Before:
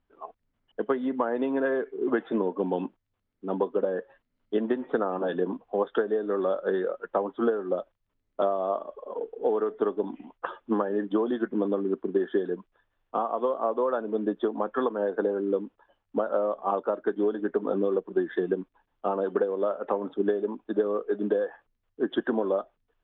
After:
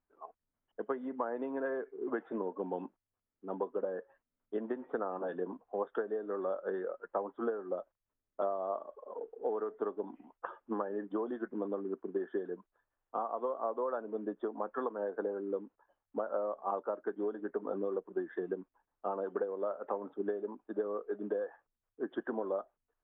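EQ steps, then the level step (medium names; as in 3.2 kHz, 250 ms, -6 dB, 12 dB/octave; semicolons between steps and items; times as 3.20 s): low-pass 1.5 kHz 12 dB/octave; bass shelf 400 Hz -8.5 dB; -5.5 dB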